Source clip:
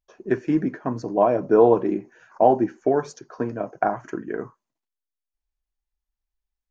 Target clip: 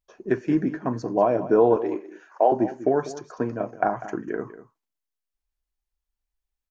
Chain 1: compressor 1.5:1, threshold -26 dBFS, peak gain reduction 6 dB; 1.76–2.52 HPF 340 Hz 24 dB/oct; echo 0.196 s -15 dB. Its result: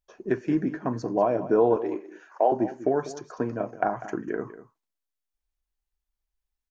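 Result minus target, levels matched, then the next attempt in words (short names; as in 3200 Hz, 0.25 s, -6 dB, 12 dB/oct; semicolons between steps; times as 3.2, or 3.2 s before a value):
compressor: peak gain reduction +3 dB
compressor 1.5:1, threshold -17.5 dBFS, peak gain reduction 3 dB; 1.76–2.52 HPF 340 Hz 24 dB/oct; echo 0.196 s -15 dB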